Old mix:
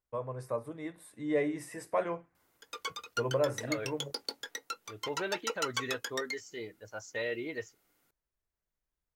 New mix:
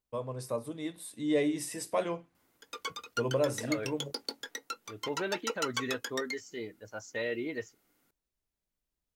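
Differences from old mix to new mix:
first voice: add resonant high shelf 2.5 kHz +9.5 dB, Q 1.5; master: add peaking EQ 240 Hz +6 dB 0.93 oct

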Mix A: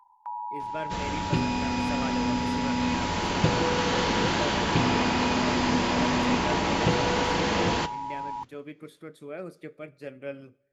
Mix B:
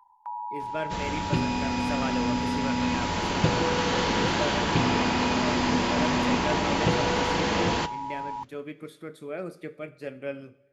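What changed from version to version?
speech: send +10.5 dB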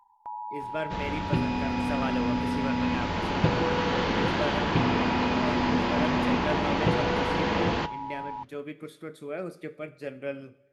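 first sound: remove resonant high-pass 1.1 kHz, resonance Q 1.9; second sound: add distance through air 170 m

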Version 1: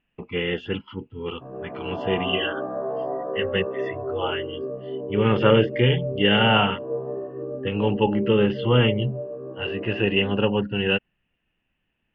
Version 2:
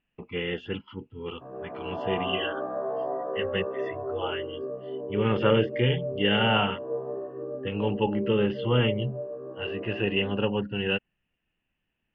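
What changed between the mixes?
speech -5.0 dB; background: add bass shelf 330 Hz -9 dB

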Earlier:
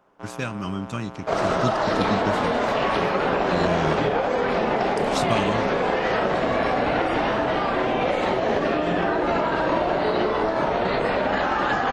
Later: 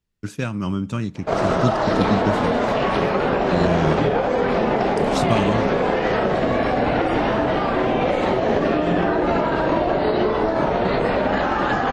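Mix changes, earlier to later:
first sound: muted; master: add bass shelf 480 Hz +6.5 dB

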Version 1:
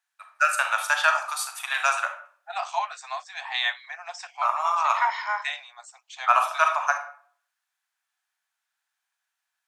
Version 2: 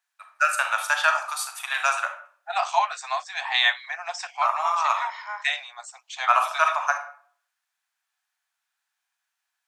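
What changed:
second voice +5.5 dB; background -6.5 dB

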